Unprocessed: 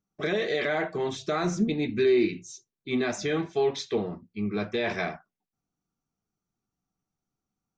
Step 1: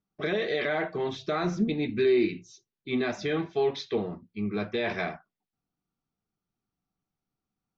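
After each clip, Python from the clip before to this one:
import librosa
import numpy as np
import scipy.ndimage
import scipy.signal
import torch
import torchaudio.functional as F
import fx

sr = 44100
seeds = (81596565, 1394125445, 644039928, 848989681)

y = scipy.signal.sosfilt(scipy.signal.butter(4, 5000.0, 'lowpass', fs=sr, output='sos'), x)
y = F.gain(torch.from_numpy(y), -1.0).numpy()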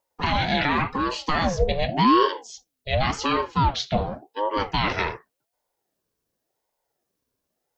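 y = fx.high_shelf(x, sr, hz=4400.0, db=10.0)
y = fx.ring_lfo(y, sr, carrier_hz=500.0, swing_pct=50, hz=0.89)
y = F.gain(torch.from_numpy(y), 8.0).numpy()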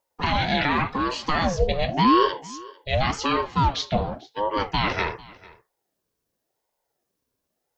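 y = x + 10.0 ** (-22.0 / 20.0) * np.pad(x, (int(447 * sr / 1000.0), 0))[:len(x)]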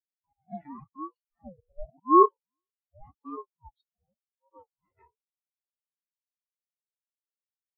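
y = fx.auto_swell(x, sr, attack_ms=222.0)
y = fx.spectral_expand(y, sr, expansion=4.0)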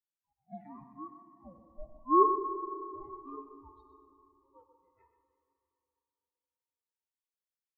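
y = x + 10.0 ** (-11.5 / 20.0) * np.pad(x, (int(124 * sr / 1000.0), 0))[:len(x)]
y = fx.rev_plate(y, sr, seeds[0], rt60_s=3.2, hf_ratio=0.6, predelay_ms=0, drr_db=8.0)
y = F.gain(torch.from_numpy(y), -6.5).numpy()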